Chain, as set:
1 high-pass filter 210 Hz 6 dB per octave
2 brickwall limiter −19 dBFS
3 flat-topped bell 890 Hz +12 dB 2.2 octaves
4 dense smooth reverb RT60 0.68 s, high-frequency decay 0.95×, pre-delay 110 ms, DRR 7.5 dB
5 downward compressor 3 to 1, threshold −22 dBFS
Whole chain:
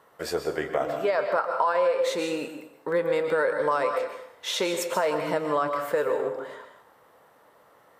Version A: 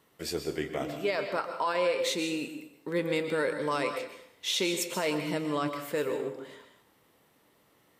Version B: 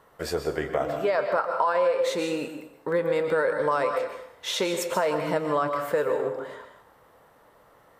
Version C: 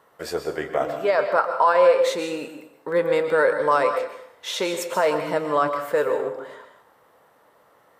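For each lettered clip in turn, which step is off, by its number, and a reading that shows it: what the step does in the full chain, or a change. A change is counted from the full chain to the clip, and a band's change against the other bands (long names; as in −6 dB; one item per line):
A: 3, 1 kHz band −8.0 dB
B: 1, 125 Hz band +4.5 dB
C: 5, change in momentary loudness spread +4 LU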